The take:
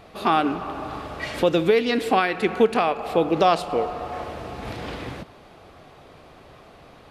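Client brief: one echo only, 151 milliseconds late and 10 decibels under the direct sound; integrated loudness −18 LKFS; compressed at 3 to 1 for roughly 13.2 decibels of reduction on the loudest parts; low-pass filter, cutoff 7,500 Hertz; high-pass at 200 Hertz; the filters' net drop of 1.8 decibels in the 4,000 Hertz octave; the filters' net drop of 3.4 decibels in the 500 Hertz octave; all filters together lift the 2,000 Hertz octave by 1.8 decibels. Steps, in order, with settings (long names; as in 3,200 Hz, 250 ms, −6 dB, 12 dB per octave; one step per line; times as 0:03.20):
high-pass filter 200 Hz
low-pass filter 7,500 Hz
parametric band 500 Hz −4 dB
parametric band 2,000 Hz +3.5 dB
parametric band 4,000 Hz −3.5 dB
downward compressor 3 to 1, threshold −34 dBFS
single-tap delay 151 ms −10 dB
level +17 dB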